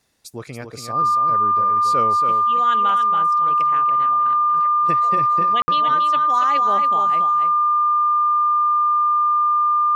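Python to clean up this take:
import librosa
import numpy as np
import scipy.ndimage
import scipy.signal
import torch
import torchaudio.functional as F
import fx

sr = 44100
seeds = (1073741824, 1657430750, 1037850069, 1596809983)

y = fx.notch(x, sr, hz=1200.0, q=30.0)
y = fx.fix_ambience(y, sr, seeds[0], print_start_s=0.0, print_end_s=0.5, start_s=5.62, end_s=5.68)
y = fx.fix_echo_inverse(y, sr, delay_ms=281, level_db=-6.5)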